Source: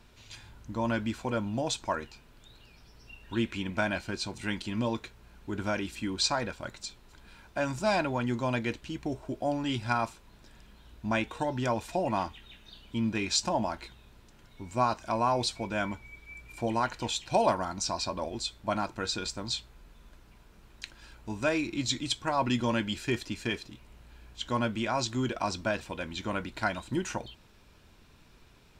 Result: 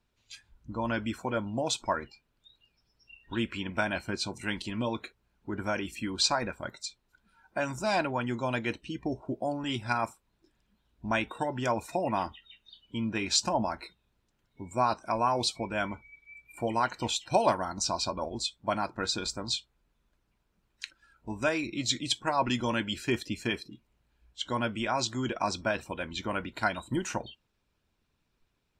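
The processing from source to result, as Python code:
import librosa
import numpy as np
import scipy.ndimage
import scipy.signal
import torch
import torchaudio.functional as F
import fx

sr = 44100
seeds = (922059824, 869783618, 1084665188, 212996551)

y = fx.hpss(x, sr, part='percussive', gain_db=5)
y = fx.noise_reduce_blind(y, sr, reduce_db=18)
y = y * 10.0 ** (-3.0 / 20.0)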